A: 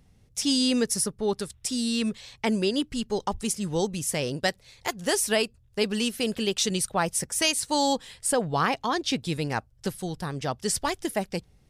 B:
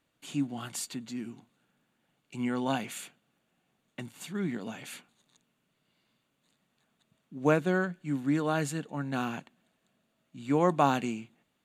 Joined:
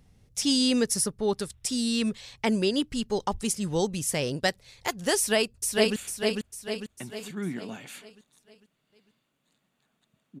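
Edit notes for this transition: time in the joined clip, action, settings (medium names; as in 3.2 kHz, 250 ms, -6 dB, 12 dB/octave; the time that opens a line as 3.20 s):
A
5.17–5.96 s: echo throw 450 ms, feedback 50%, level -2.5 dB
5.96 s: go over to B from 2.94 s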